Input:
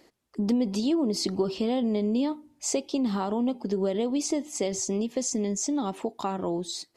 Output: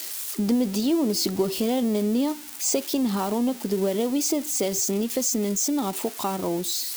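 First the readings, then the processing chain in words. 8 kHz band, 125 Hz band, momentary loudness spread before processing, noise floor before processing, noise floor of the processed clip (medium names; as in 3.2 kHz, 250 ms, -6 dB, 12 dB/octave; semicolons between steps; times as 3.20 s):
+6.5 dB, +2.5 dB, 6 LU, -65 dBFS, -38 dBFS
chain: zero-crossing glitches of -26 dBFS; trim +2.5 dB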